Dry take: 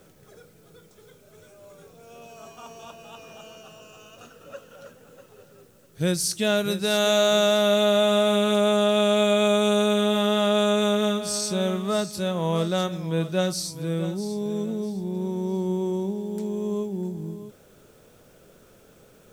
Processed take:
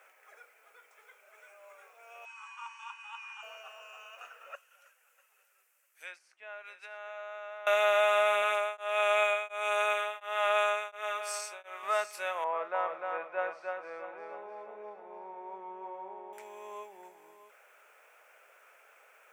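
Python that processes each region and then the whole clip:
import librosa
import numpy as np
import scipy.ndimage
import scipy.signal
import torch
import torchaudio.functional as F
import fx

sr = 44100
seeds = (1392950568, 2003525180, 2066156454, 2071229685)

y = fx.chain(x, sr, fx.brickwall_bandpass(low_hz=800.0, high_hz=9600.0),
    fx.comb(ms=2.0, depth=0.31), at=(2.25, 3.43))
y = fx.chain(y, sr, fx.pre_emphasis(coefficient=0.9),
    fx.env_lowpass_down(base_hz=1200.0, full_db=-30.5), at=(4.55, 7.67))
y = fx.chain(y, sr, fx.highpass(hz=300.0, slope=12),
    fx.tremolo_abs(hz=1.4), at=(8.42, 11.83))
y = fx.chain(y, sr, fx.lowpass(hz=1300.0, slope=12),
    fx.echo_single(ms=301, db=-4.0), at=(12.44, 16.33))
y = scipy.signal.sosfilt(scipy.signal.butter(4, 720.0, 'highpass', fs=sr, output='sos'), y)
y = fx.high_shelf_res(y, sr, hz=3000.0, db=-8.5, q=3.0)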